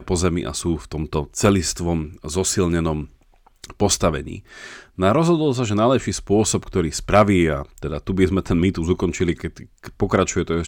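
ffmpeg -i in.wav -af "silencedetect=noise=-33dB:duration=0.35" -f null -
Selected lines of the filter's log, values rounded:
silence_start: 3.05
silence_end: 3.64 | silence_duration: 0.59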